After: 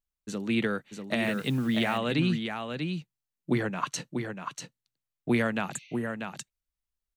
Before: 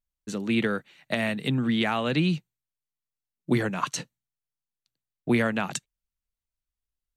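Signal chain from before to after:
0:03.51–0:03.94: bass and treble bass −1 dB, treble −6 dB
on a send: single-tap delay 641 ms −6 dB
0:01.24–0:01.98: on the sum: bit-depth reduction 8 bits, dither none
0:05.76–0:06.11: healed spectral selection 2,000–6,400 Hz both
level −2.5 dB

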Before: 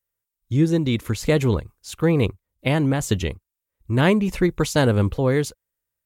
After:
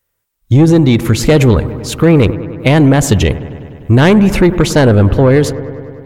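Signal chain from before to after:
high-shelf EQ 4,000 Hz −5 dB, from 0:04.59 −10.5 dB
soft clipping −14.5 dBFS, distortion −15 dB
delay with a low-pass on its return 100 ms, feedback 75%, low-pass 1,800 Hz, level −17 dB
boost into a limiter +17.5 dB
level −1 dB

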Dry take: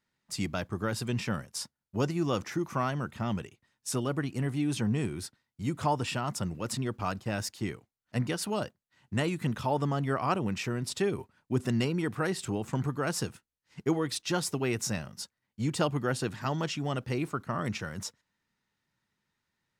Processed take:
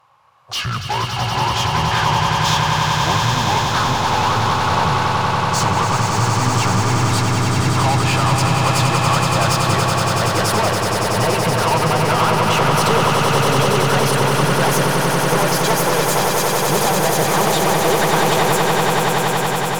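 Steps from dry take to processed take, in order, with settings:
gliding playback speed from 58% → 142%
graphic EQ with 10 bands 125 Hz +9 dB, 250 Hz −11 dB, 1,000 Hz +8 dB, 2,000 Hz −7 dB, 4,000 Hz −5 dB, 8,000 Hz −7 dB
downward compressor, threshold −29 dBFS, peak gain reduction 9.5 dB
mid-hump overdrive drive 28 dB, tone 7,600 Hz, clips at −18 dBFS
on a send: echo that builds up and dies away 94 ms, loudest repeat 8, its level −6 dB
on the sum: level +5 dB

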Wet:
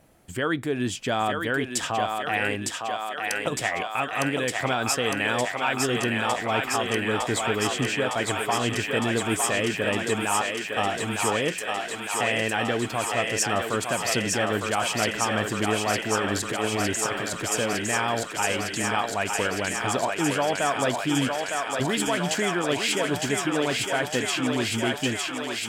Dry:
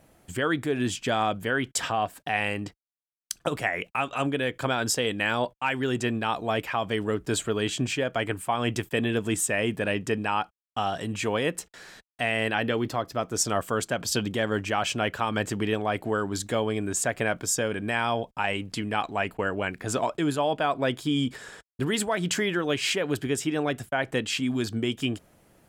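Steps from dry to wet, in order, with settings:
0:16.21–0:17.52: compressor whose output falls as the input rises −29 dBFS, ratio −0.5
on a send: feedback echo with a high-pass in the loop 908 ms, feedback 84%, high-pass 440 Hz, level −3 dB

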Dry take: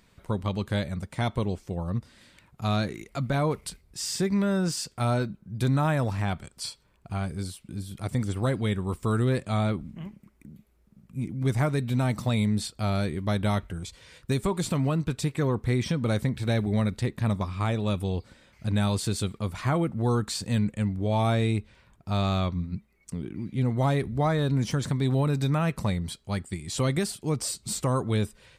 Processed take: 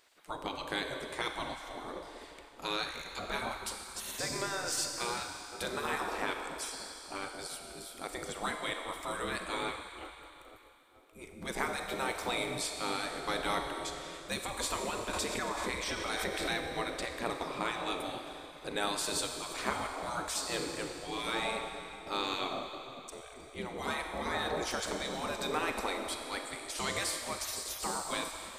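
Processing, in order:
four-comb reverb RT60 3 s, combs from 30 ms, DRR 4.5 dB
gate on every frequency bin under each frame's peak −15 dB weak
0:15.13–0:16.65: background raised ahead of every attack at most 30 dB per second

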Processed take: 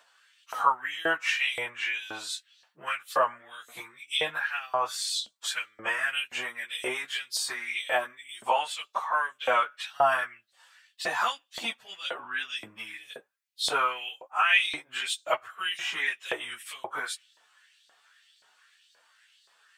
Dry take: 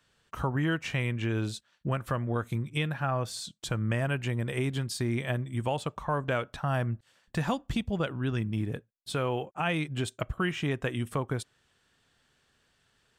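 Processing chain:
time stretch by phase vocoder 1.5×
auto-filter high-pass saw up 1.9 Hz 620–4,500 Hz
level +8 dB

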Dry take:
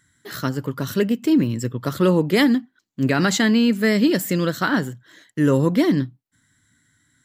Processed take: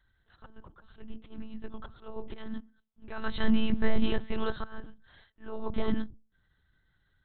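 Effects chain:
volume swells 578 ms
mains-hum notches 60/120/180/240/300/360/420/480 Hz
hollow resonant body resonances 210/640/1,600 Hz, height 8 dB, ringing for 80 ms
one-pitch LPC vocoder at 8 kHz 220 Hz
octave-band graphic EQ 125/250/500/1,000/2,000 Hz −3/−8/−5/+4/−8 dB
level −4 dB

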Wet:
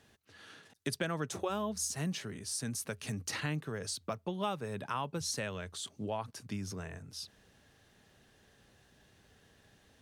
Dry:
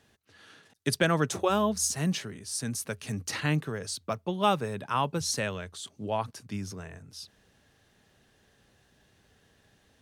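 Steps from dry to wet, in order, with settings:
downward compressor 2.5 to 1, threshold −36 dBFS, peak gain reduction 12 dB

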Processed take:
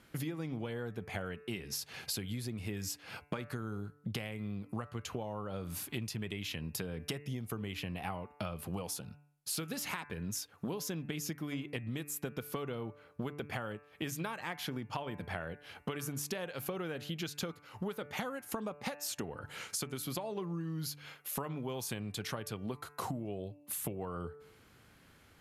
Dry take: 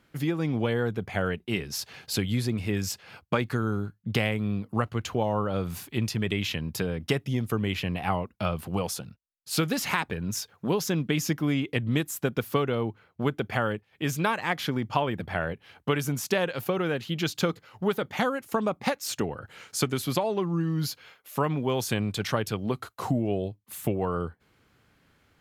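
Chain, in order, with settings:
Chebyshev low-pass filter 12,000 Hz, order 3
high-shelf EQ 8,600 Hz +10.5 dB
hum removal 146 Hz, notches 19
downward compressor 8 to 1, threshold −38 dBFS, peak gain reduction 18 dB
level +2 dB

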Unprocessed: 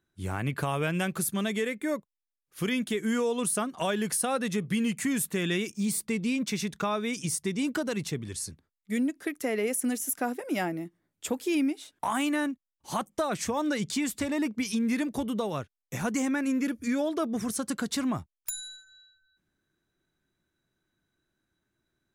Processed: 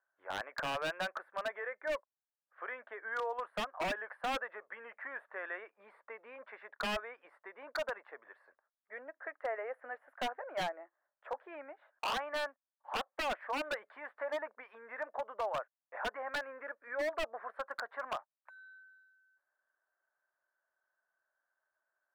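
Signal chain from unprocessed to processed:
elliptic band-pass filter 580–1,700 Hz, stop band 60 dB
wave folding −30 dBFS
level +1 dB

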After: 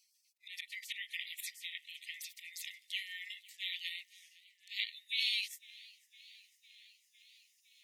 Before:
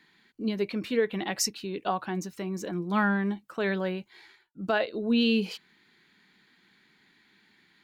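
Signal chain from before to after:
pitch glide at a constant tempo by −2.5 semitones ending unshifted
volume swells 103 ms
gate on every frequency bin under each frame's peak −25 dB weak
linear-phase brick-wall high-pass 1,800 Hz
feedback echo with a swinging delay time 506 ms, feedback 72%, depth 107 cents, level −22.5 dB
level +10.5 dB

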